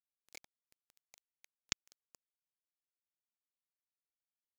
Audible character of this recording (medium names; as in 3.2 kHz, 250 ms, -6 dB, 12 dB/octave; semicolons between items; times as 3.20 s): phasing stages 2, 2.8 Hz, lowest notch 620–1700 Hz; a quantiser's noise floor 8-bit, dither none